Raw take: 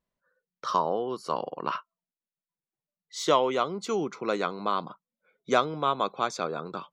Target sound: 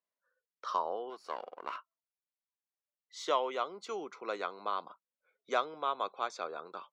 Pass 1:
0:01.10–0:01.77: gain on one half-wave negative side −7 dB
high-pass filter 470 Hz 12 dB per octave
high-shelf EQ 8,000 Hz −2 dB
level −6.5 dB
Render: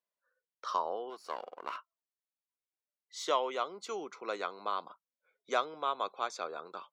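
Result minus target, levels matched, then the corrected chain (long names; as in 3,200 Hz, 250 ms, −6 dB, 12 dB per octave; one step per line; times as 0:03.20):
8,000 Hz band +4.0 dB
0:01.10–0:01.77: gain on one half-wave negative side −7 dB
high-pass filter 470 Hz 12 dB per octave
high-shelf EQ 8,000 Hz −13 dB
level −6.5 dB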